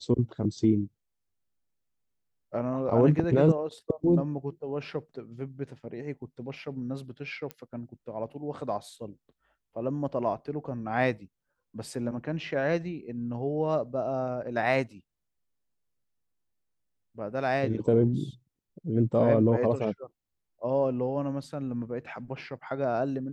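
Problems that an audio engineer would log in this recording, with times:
0:07.51: click −21 dBFS

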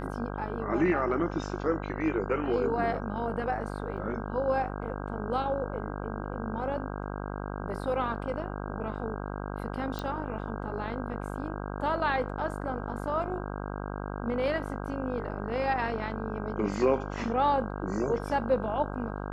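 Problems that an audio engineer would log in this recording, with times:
mains buzz 50 Hz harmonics 32 −36 dBFS
0:03.97–0:03.98: drop-out 5.4 ms
0:09.99: click −21 dBFS

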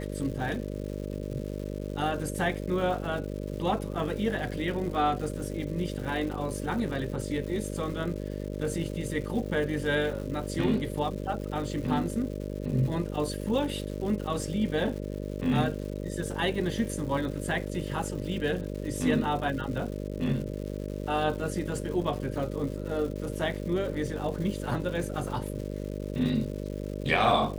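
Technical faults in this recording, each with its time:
mains buzz 50 Hz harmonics 12 −35 dBFS
surface crackle 280 per second −38 dBFS

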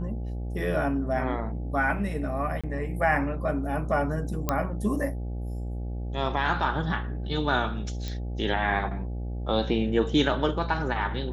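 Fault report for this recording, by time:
mains buzz 60 Hz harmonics 14 −32 dBFS
0:02.61–0:02.64: drop-out 26 ms
0:04.49: click −10 dBFS
0:08.08: click −20 dBFS

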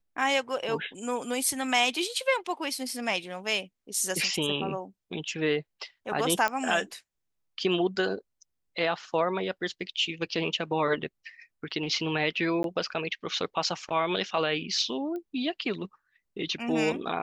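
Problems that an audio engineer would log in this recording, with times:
0:06.48: click −14 dBFS
0:12.63–0:12.64: drop-out 12 ms
0:15.16: click −27 dBFS

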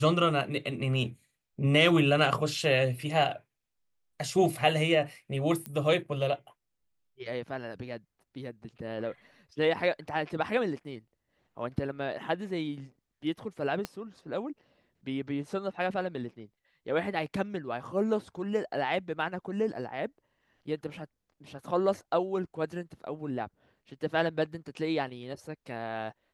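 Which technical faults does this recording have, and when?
0:05.66: click −20 dBFS
0:13.85: click −18 dBFS

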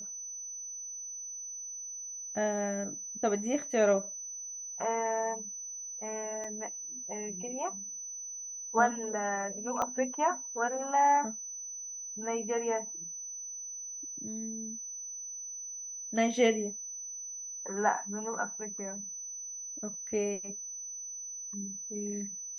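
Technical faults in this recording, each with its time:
whistle 6,000 Hz −39 dBFS
0:06.44: drop-out 4.3 ms
0:09.82: click −19 dBFS

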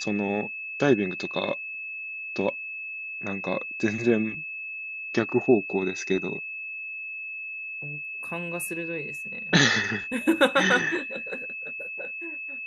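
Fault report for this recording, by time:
whistle 2,600 Hz −33 dBFS

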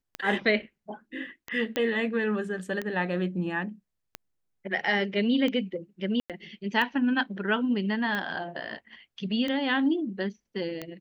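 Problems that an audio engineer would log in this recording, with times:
scratch tick 45 rpm −18 dBFS
0:01.76: click −14 dBFS
0:06.20–0:06.30: drop-out 97 ms

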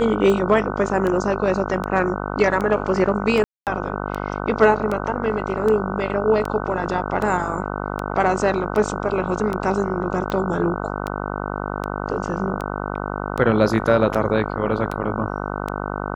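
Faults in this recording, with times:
mains buzz 50 Hz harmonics 30 −27 dBFS
scratch tick 78 rpm −13 dBFS
0:03.44–0:03.67: drop-out 228 ms

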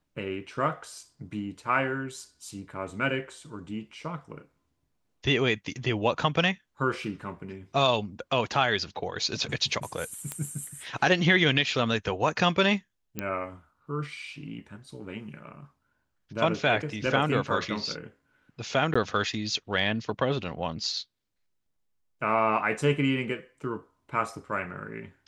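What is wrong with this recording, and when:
0:10.32: click −17 dBFS
0:13.19: click −16 dBFS
0:18.94–0:18.95: drop-out 15 ms

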